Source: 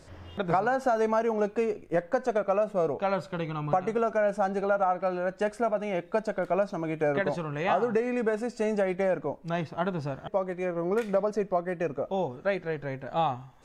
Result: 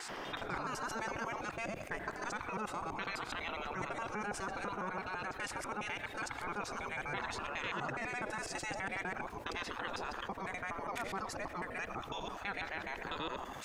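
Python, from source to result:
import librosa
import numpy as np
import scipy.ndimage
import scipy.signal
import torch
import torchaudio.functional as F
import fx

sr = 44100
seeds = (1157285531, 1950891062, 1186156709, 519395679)

y = fx.local_reverse(x, sr, ms=83.0)
y = fx.spec_gate(y, sr, threshold_db=-15, keep='weak')
y = fx.env_flatten(y, sr, amount_pct=70)
y = F.gain(torch.from_numpy(y), -4.5).numpy()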